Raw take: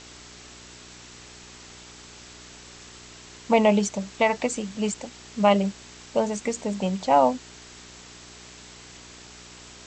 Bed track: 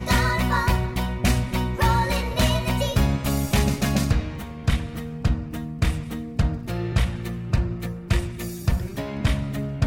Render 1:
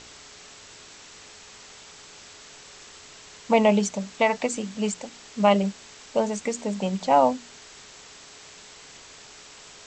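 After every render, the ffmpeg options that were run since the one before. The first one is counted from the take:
-af "bandreject=f=60:t=h:w=4,bandreject=f=120:t=h:w=4,bandreject=f=180:t=h:w=4,bandreject=f=240:t=h:w=4,bandreject=f=300:t=h:w=4,bandreject=f=360:t=h:w=4"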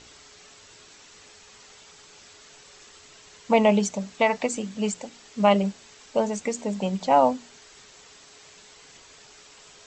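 -af "afftdn=nr=6:nf=-47"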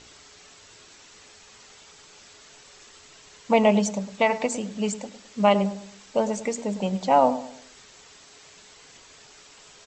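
-filter_complex "[0:a]asplit=2[a][b];[b]adelay=106,lowpass=f=1.3k:p=1,volume=-12.5dB,asplit=2[c][d];[d]adelay=106,lowpass=f=1.3k:p=1,volume=0.4,asplit=2[e][f];[f]adelay=106,lowpass=f=1.3k:p=1,volume=0.4,asplit=2[g][h];[h]adelay=106,lowpass=f=1.3k:p=1,volume=0.4[i];[a][c][e][g][i]amix=inputs=5:normalize=0"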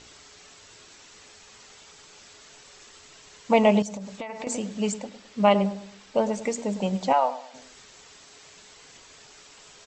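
-filter_complex "[0:a]asettb=1/sr,asplit=3[a][b][c];[a]atrim=end=3.824[d];[b]atrim=start=3.82:end=4.47,asetpts=PTS-STARTPTS,afade=t=in:d=0.004:c=qsin,afade=t=out:st=0.646:d=0.004:c=qsin,acompressor=threshold=-31dB:ratio=10:attack=3.2:release=140:knee=1:detection=peak[e];[c]atrim=start=4.466[f];[d][e]acrossfade=d=0.004:c1=hsin:c2=qsin[g];[g][f]acrossfade=d=0.004:c1=qsin:c2=hsin,asettb=1/sr,asplit=3[h][i][j];[h]atrim=end=4.984[k];[i]atrim=start=4.98:end=6.42,asetpts=PTS-STARTPTS,afade=t=in:d=0.004:c=qsin,afade=t=out:st=1.436:d=0.004:c=qsin,equalizer=f=7.1k:t=o:w=0.77:g=-6[l];[j]atrim=start=6.416[m];[k][l]acrossfade=d=0.004:c1=hsin:c2=qsin[n];[n][m]acrossfade=d=0.004:c1=qsin:c2=hsin,asplit=3[o][p][q];[o]afade=t=out:st=7.12:d=0.02[r];[p]highpass=800,lowpass=5.3k,afade=t=in:st=7.12:d=0.02,afade=t=out:st=7.53:d=0.02[s];[q]afade=t=in:st=7.53:d=0.02[t];[r][s][t]amix=inputs=3:normalize=0"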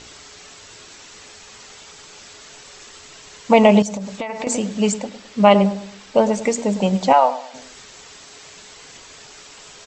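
-af "volume=8dB,alimiter=limit=-1dB:level=0:latency=1"

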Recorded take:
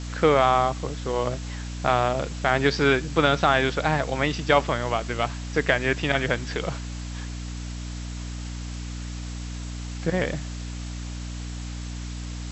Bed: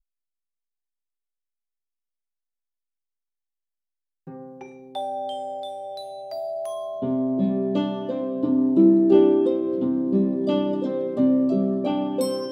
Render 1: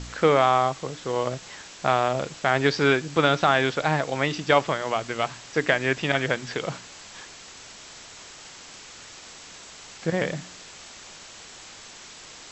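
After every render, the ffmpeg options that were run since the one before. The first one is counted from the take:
-af "bandreject=f=60:t=h:w=4,bandreject=f=120:t=h:w=4,bandreject=f=180:t=h:w=4,bandreject=f=240:t=h:w=4,bandreject=f=300:t=h:w=4"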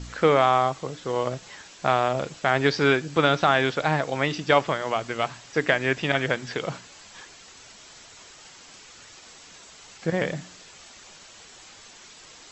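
-af "afftdn=nr=6:nf=-45"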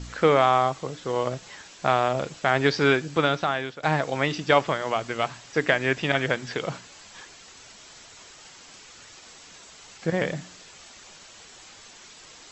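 -filter_complex "[0:a]asplit=2[a][b];[a]atrim=end=3.83,asetpts=PTS-STARTPTS,afade=t=out:st=3.05:d=0.78:silence=0.158489[c];[b]atrim=start=3.83,asetpts=PTS-STARTPTS,afade=t=in:d=0.004:c=hsin:silence=0.158489[d];[c][d]concat=n=2:v=0:a=1"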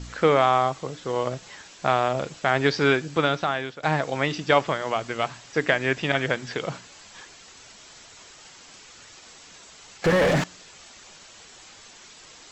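-filter_complex "[0:a]asettb=1/sr,asplit=3[a][b][c];[a]atrim=end=10.044[d];[b]atrim=start=10.04:end=10.44,asetpts=PTS-STARTPTS,afade=t=in:d=0.004:c=qsin,afade=t=out:st=0.396:d=0.004:c=qsin,asplit=2[e][f];[f]highpass=f=720:p=1,volume=38dB,asoftclip=type=tanh:threshold=-10.5dB[g];[e][g]amix=inputs=2:normalize=0,lowpass=f=1.1k:p=1,volume=-6dB[h];[c]atrim=start=10.436[i];[d][h]acrossfade=d=0.004:c1=hsin:c2=qsin[j];[j][i]acrossfade=d=0.004:c1=qsin:c2=hsin"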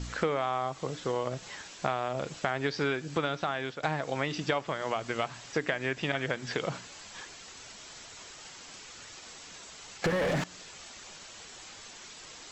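-af "acompressor=threshold=-27dB:ratio=5"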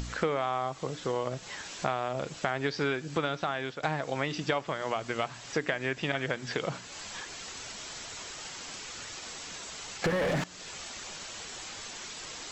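-af "acompressor=mode=upward:threshold=-34dB:ratio=2.5"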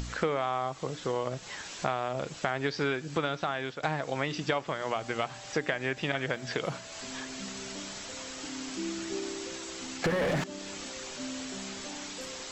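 -filter_complex "[1:a]volume=-21dB[a];[0:a][a]amix=inputs=2:normalize=0"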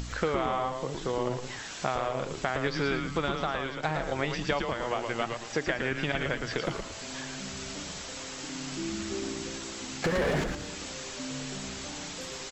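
-filter_complex "[0:a]asplit=5[a][b][c][d][e];[b]adelay=112,afreqshift=-120,volume=-5dB[f];[c]adelay=224,afreqshift=-240,volume=-13.9dB[g];[d]adelay=336,afreqshift=-360,volume=-22.7dB[h];[e]adelay=448,afreqshift=-480,volume=-31.6dB[i];[a][f][g][h][i]amix=inputs=5:normalize=0"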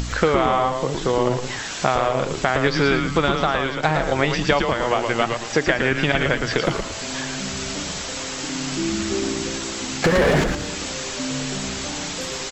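-af "volume=10.5dB,alimiter=limit=-1dB:level=0:latency=1"

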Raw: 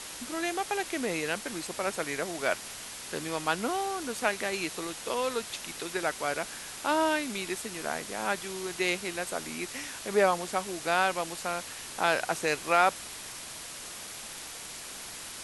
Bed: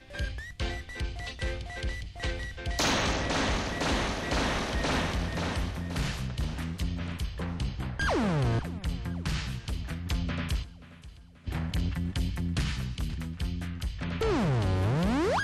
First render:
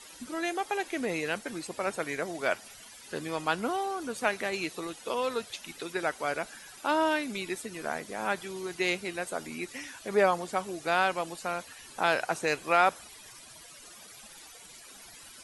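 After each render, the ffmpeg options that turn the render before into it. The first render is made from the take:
-af "afftdn=nr=14:nf=-42"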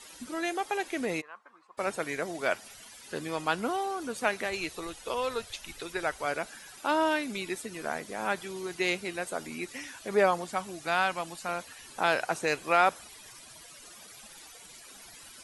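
-filter_complex "[0:a]asplit=3[a][b][c];[a]afade=t=out:st=1.2:d=0.02[d];[b]bandpass=f=1.1k:t=q:w=7.6,afade=t=in:st=1.2:d=0.02,afade=t=out:st=1.77:d=0.02[e];[c]afade=t=in:st=1.77:d=0.02[f];[d][e][f]amix=inputs=3:normalize=0,asplit=3[g][h][i];[g]afade=t=out:st=4.44:d=0.02[j];[h]asubboost=boost=9:cutoff=67,afade=t=in:st=4.44:d=0.02,afade=t=out:st=6.25:d=0.02[k];[i]afade=t=in:st=6.25:d=0.02[l];[j][k][l]amix=inputs=3:normalize=0,asettb=1/sr,asplit=3[m][n][o];[m]atrim=end=10.444[p];[n]atrim=start=10.44:end=11.49,asetpts=PTS-STARTPTS,afade=t=in:d=0.004:c=qsin,afade=t=out:st=1.046:d=0.004:c=qsin,equalizer=f=440:t=o:w=0.77:g=-7.5[q];[o]atrim=start=11.486[r];[p][q]acrossfade=d=0.004:c1=hsin:c2=qsin[s];[s][r]acrossfade=d=0.004:c1=qsin:c2=hsin"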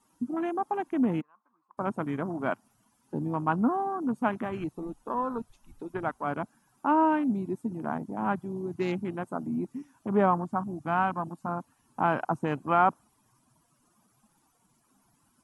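-af "afwtdn=0.0178,equalizer=f=125:t=o:w=1:g=11,equalizer=f=250:t=o:w=1:g=11,equalizer=f=500:t=o:w=1:g=-8,equalizer=f=1k:t=o:w=1:g=9,equalizer=f=2k:t=o:w=1:g=-10,equalizer=f=4k:t=o:w=1:g=-11,equalizer=f=8k:t=o:w=1:g=-4"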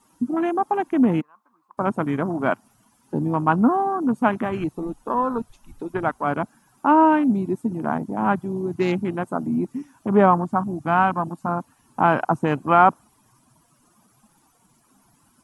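-af "volume=8dB"

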